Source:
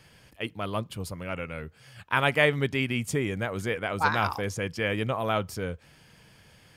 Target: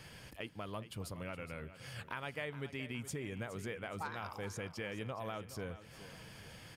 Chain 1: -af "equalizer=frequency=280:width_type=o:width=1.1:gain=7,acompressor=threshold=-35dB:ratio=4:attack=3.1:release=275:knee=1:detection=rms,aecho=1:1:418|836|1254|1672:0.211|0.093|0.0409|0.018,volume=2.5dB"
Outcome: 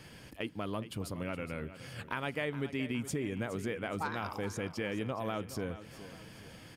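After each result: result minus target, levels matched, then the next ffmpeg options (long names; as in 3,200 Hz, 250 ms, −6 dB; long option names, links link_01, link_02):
downward compressor: peak gain reduction −5 dB; 250 Hz band +2.5 dB
-af "equalizer=frequency=280:width_type=o:width=1.1:gain=7,acompressor=threshold=-42.5dB:ratio=4:attack=3.1:release=275:knee=1:detection=rms,aecho=1:1:418|836|1254|1672:0.211|0.093|0.0409|0.018,volume=2.5dB"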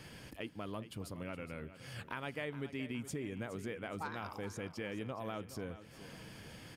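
250 Hz band +3.0 dB
-af "acompressor=threshold=-42.5dB:ratio=4:attack=3.1:release=275:knee=1:detection=rms,aecho=1:1:418|836|1254|1672:0.211|0.093|0.0409|0.018,volume=2.5dB"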